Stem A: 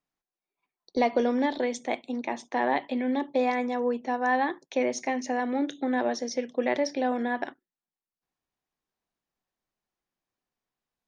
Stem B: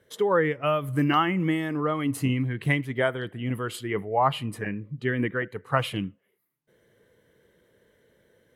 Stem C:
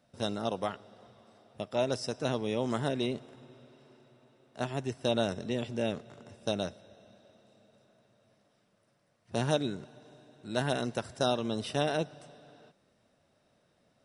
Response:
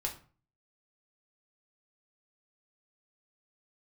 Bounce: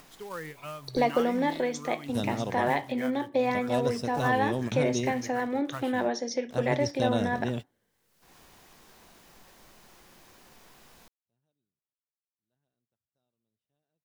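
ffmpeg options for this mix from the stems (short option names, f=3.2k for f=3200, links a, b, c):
-filter_complex "[0:a]acompressor=mode=upward:threshold=-28dB:ratio=2.5,volume=-3dB,asplit=3[a][b][c];[b]volume=-9.5dB[d];[1:a]equalizer=f=430:t=o:w=1.7:g=-6,acrusher=bits=3:mode=log:mix=0:aa=0.000001,volume=-13dB[e];[2:a]lowshelf=f=220:g=11,aeval=exprs='val(0)*gte(abs(val(0)),0.00501)':c=same,adelay=1950,volume=-3dB[f];[c]apad=whole_len=705589[g];[f][g]sidechaingate=range=-55dB:threshold=-51dB:ratio=16:detection=peak[h];[3:a]atrim=start_sample=2205[i];[d][i]afir=irnorm=-1:irlink=0[j];[a][e][h][j]amix=inputs=4:normalize=0"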